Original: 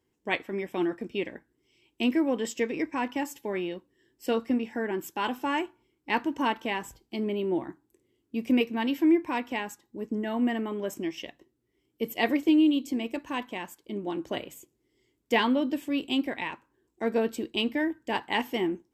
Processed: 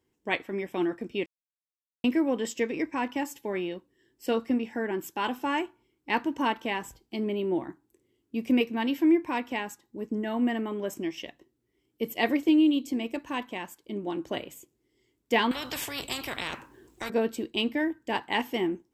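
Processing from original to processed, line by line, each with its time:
1.26–2.04 mute
15.51–17.1 spectral compressor 4:1

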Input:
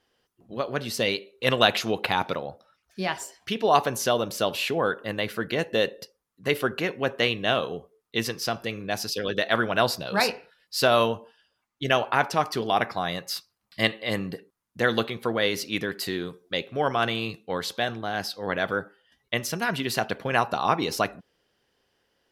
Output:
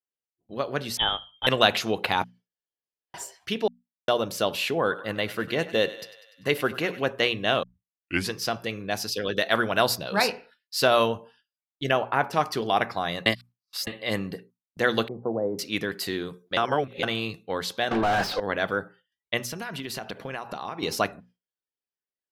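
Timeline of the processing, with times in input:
0.97–1.47 inverted band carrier 3600 Hz
2.24–3.14 room tone
3.68–4.08 mute
4.79–7.04 thinning echo 98 ms, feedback 65%, level -15 dB
7.63 tape start 0.69 s
9.37–9.96 high shelf 8200 Hz +9 dB
11.91–12.33 bell 5400 Hz -10.5 dB 2.1 oct
13.26–13.87 reverse
15.08–15.59 elliptic band-pass 110–820 Hz, stop band 50 dB
16.57–17.03 reverse
17.91–18.4 overdrive pedal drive 34 dB, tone 1200 Hz, clips at -14 dBFS
19.43–20.83 compressor, threshold -30 dBFS
whole clip: spectral noise reduction 12 dB; notches 60/120/180/240 Hz; gate with hold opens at -46 dBFS

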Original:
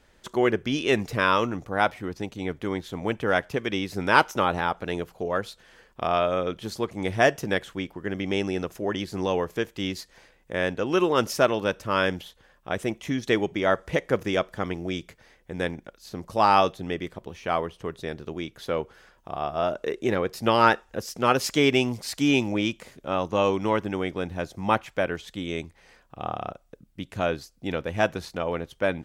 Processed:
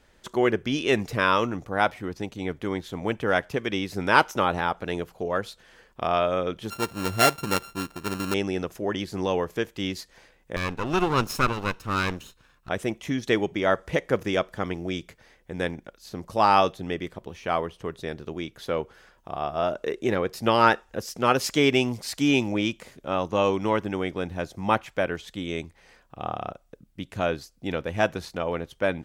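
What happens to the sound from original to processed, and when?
6.7–8.34 sample sorter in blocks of 32 samples
10.56–12.69 minimum comb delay 0.75 ms

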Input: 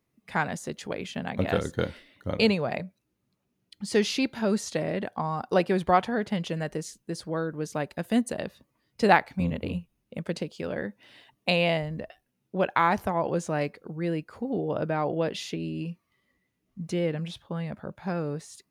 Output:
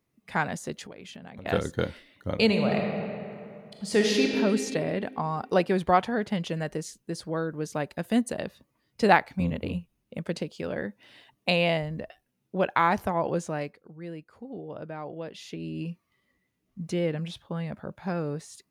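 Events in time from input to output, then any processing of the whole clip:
0.82–1.46 compressor 16:1, threshold -39 dBFS
2.45–4.29 reverb throw, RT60 2.6 s, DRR 0.5 dB
13.32–15.86 dip -10 dB, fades 0.50 s linear

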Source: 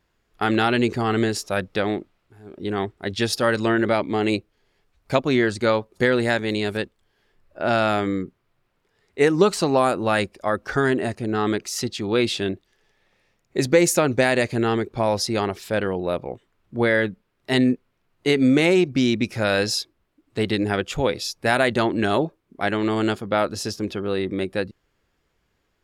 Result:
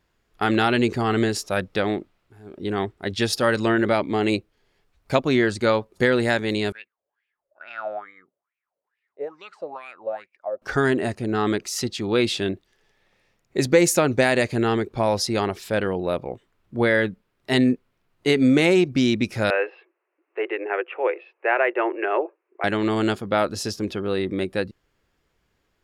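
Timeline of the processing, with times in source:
6.72–10.62 wah 2.3 Hz 540–2500 Hz, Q 8.6
19.5–22.64 Chebyshev band-pass 350–2700 Hz, order 5

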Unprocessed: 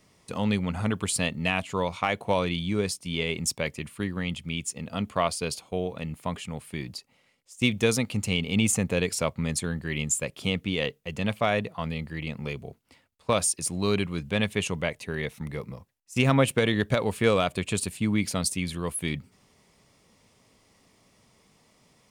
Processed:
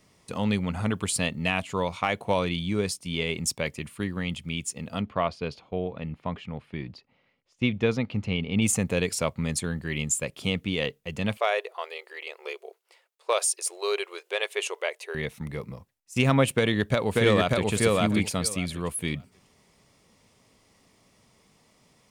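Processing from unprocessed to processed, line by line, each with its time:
5–8.62 air absorption 260 m
11.37–15.15 brick-wall FIR high-pass 350 Hz
16.54–17.7 echo throw 0.59 s, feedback 15%, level -1 dB

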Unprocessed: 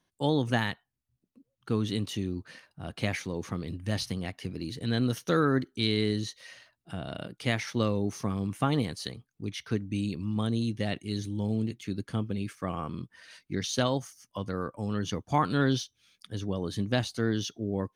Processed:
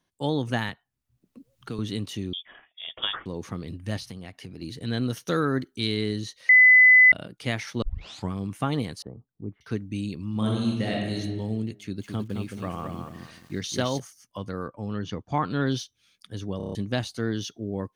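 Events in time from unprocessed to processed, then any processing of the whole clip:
0.69–1.79 three-band squash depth 70%
2.33–3.26 inverted band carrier 3500 Hz
3.97–4.62 compressor 2:1, threshold -39 dBFS
5.25–5.94 high shelf 5200 Hz -> 8100 Hz +5.5 dB
6.49–7.12 bleep 2010 Hz -10.5 dBFS
7.82 tape start 0.50 s
9.02–9.61 LPF 1000 Hz 24 dB/oct
10.3–11.19 reverb throw, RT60 1.2 s, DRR -2.5 dB
11.79–14 lo-fi delay 0.217 s, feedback 35%, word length 9-bit, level -5 dB
14.68–15.67 air absorption 120 m
16.57 stutter in place 0.03 s, 6 plays

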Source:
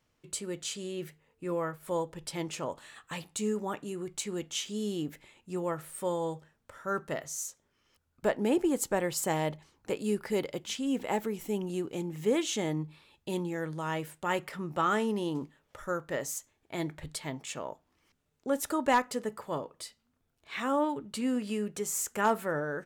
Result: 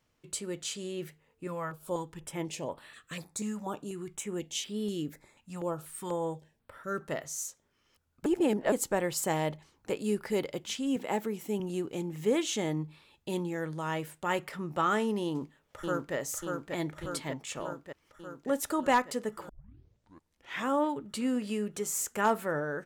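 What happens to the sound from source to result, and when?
1.47–7.01 stepped notch 4.1 Hz 390–6600 Hz
8.26–8.72 reverse
10.96–11.6 Chebyshev high-pass 160 Hz
15.24–16.15 echo throw 0.59 s, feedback 70%, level -3.5 dB
19.49 tape start 1.18 s

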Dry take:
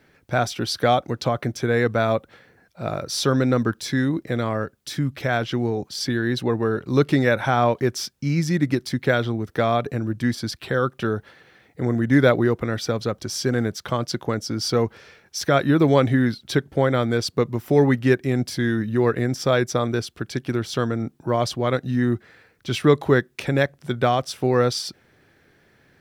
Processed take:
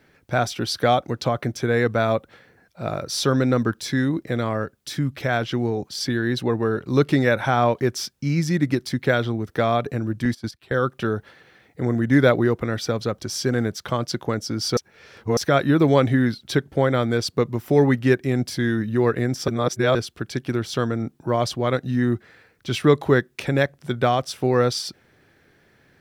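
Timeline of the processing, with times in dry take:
10.25–10.79 gate -28 dBFS, range -15 dB
14.77–15.37 reverse
19.48–19.95 reverse

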